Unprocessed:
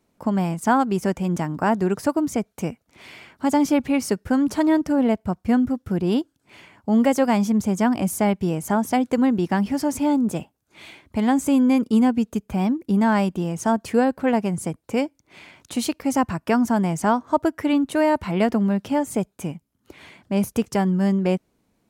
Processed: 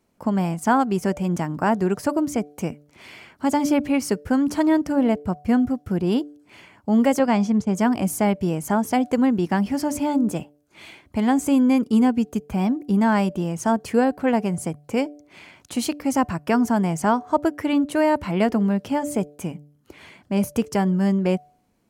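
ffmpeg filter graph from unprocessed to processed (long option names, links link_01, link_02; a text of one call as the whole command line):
ffmpeg -i in.wav -filter_complex "[0:a]asettb=1/sr,asplit=3[link_01][link_02][link_03];[link_01]atrim=end=7.194[link_04];[link_02]atrim=start=7.19:end=7.75,asetpts=PTS-STARTPTS,afade=type=in:duration=0.004:curve=qsin,afade=type=out:start_time=0.556:duration=0.004:curve=qsin,lowpass=5900,agate=range=-33dB:threshold=-25dB:ratio=3:release=100:detection=peak[link_05];[link_03]atrim=start=7.746[link_06];[link_04][link_05]acrossfade=duration=0.004:curve1=hsin:curve2=qsin[link_07];[link_07][link_06]acrossfade=duration=0.004:curve1=qsin:curve2=hsin,bandreject=frequency=3700:width=17,bandreject=frequency=146.6:width_type=h:width=4,bandreject=frequency=293.2:width_type=h:width=4,bandreject=frequency=439.8:width_type=h:width=4,bandreject=frequency=586.4:width_type=h:width=4,bandreject=frequency=733:width_type=h:width=4" out.wav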